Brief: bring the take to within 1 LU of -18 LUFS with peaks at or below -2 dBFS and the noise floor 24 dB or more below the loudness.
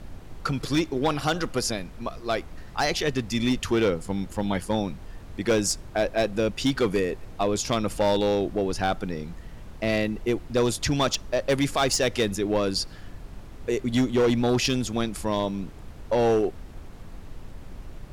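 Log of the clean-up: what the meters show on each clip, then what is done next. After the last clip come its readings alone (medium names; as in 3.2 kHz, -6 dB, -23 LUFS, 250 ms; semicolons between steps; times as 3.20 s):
clipped samples 1.5%; clipping level -16.5 dBFS; noise floor -43 dBFS; noise floor target -50 dBFS; loudness -26.0 LUFS; peak level -16.5 dBFS; loudness target -18.0 LUFS
-> clip repair -16.5 dBFS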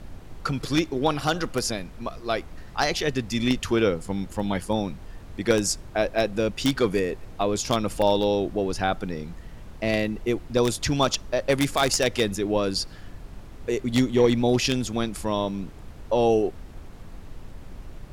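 clipped samples 0.0%; noise floor -43 dBFS; noise floor target -49 dBFS
-> noise print and reduce 6 dB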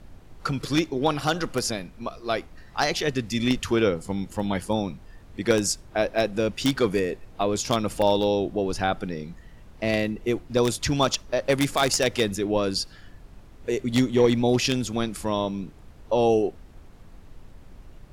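noise floor -48 dBFS; noise floor target -49 dBFS
-> noise print and reduce 6 dB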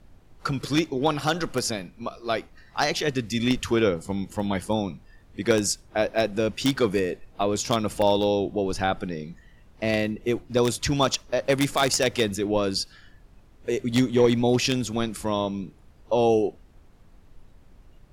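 noise floor -53 dBFS; loudness -25.0 LUFS; peak level -7.5 dBFS; loudness target -18.0 LUFS
-> trim +7 dB; peak limiter -2 dBFS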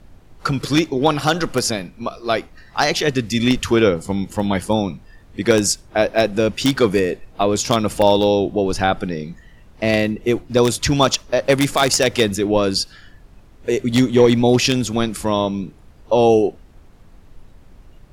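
loudness -18.5 LUFS; peak level -2.0 dBFS; noise floor -46 dBFS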